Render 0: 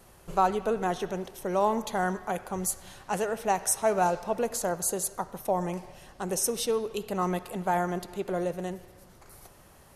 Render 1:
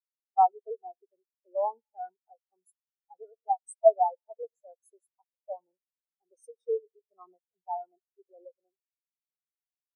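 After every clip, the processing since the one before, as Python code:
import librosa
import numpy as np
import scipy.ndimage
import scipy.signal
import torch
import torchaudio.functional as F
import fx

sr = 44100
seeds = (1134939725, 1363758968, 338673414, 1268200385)

y = fx.bass_treble(x, sr, bass_db=-14, treble_db=4)
y = fx.spectral_expand(y, sr, expansion=4.0)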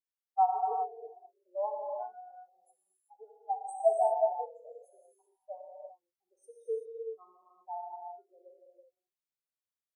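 y = fx.rev_gated(x, sr, seeds[0], gate_ms=410, shape='flat', drr_db=-0.5)
y = y * librosa.db_to_amplitude(-6.5)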